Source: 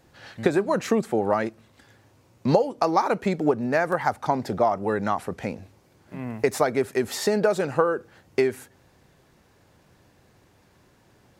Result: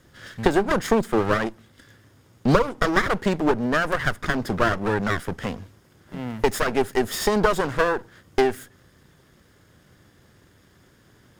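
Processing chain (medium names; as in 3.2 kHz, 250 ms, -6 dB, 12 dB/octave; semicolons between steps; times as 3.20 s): comb filter that takes the minimum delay 0.59 ms; trim +4 dB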